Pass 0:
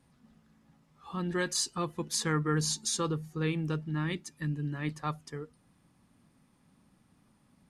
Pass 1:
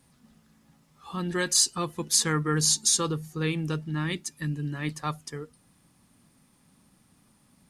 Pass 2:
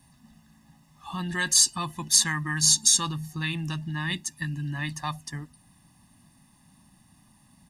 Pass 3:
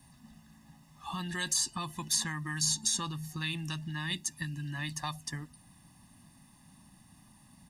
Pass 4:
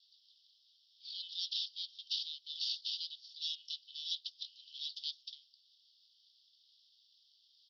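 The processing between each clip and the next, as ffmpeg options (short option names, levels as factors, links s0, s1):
-af "highshelf=f=4000:g=10,volume=1.33"
-filter_complex "[0:a]aecho=1:1:1.1:0.99,acrossover=split=980[s0][s1];[s0]alimiter=level_in=1.33:limit=0.0631:level=0:latency=1,volume=0.75[s2];[s2][s1]amix=inputs=2:normalize=0"
-filter_complex "[0:a]acrossover=split=1100|2900[s0][s1][s2];[s0]acompressor=threshold=0.0141:ratio=4[s3];[s1]acompressor=threshold=0.00708:ratio=4[s4];[s2]acompressor=threshold=0.0316:ratio=4[s5];[s3][s4][s5]amix=inputs=3:normalize=0"
-af "aeval=exprs='abs(val(0))':c=same,asuperpass=centerf=4100:order=12:qfactor=1.8,volume=2.11"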